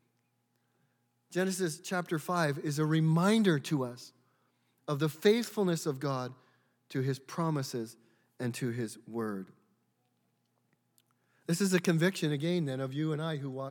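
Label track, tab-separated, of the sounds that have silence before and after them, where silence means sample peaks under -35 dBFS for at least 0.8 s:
1.330000	3.910000	sound
4.880000	9.420000	sound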